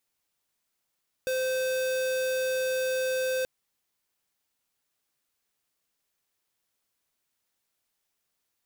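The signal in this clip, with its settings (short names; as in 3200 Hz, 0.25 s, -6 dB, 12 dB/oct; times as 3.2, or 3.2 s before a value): tone square 517 Hz -28 dBFS 2.18 s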